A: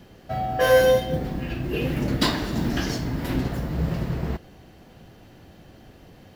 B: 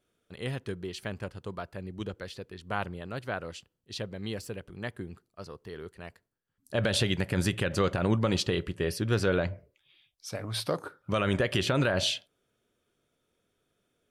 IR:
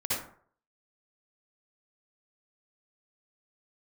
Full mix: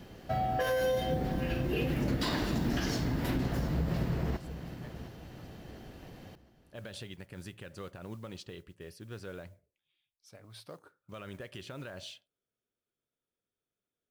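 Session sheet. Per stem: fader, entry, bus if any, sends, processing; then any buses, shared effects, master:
-1.0 dB, 0.00 s, no send, echo send -16.5 dB, peak limiter -17 dBFS, peak gain reduction 11 dB
-17.5 dB, 0.00 s, no send, no echo send, modulation noise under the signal 25 dB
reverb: none
echo: feedback delay 710 ms, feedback 35%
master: compression 2:1, threshold -30 dBFS, peak gain reduction 5 dB

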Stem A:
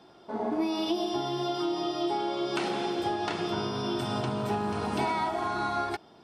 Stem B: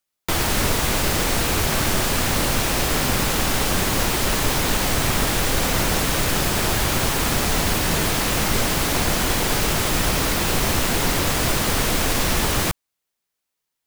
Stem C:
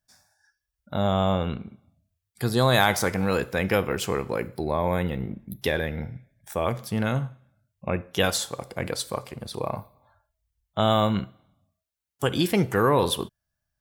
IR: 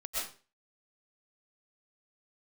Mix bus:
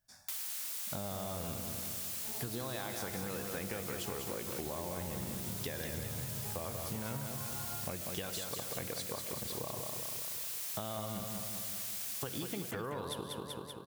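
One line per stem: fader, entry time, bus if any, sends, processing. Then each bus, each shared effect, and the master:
-12.0 dB, 1.95 s, no send, no echo send, resonant low shelf 170 Hz +12.5 dB, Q 1.5
-10.5 dB, 0.00 s, no send, echo send -22 dB, differentiator
-1.0 dB, 0.00 s, send -17 dB, echo send -5.5 dB, compression, threshold -26 dBFS, peak gain reduction 11 dB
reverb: on, RT60 0.35 s, pre-delay 85 ms
echo: feedback delay 192 ms, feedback 54%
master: compression 6:1, threshold -37 dBFS, peak gain reduction 13 dB

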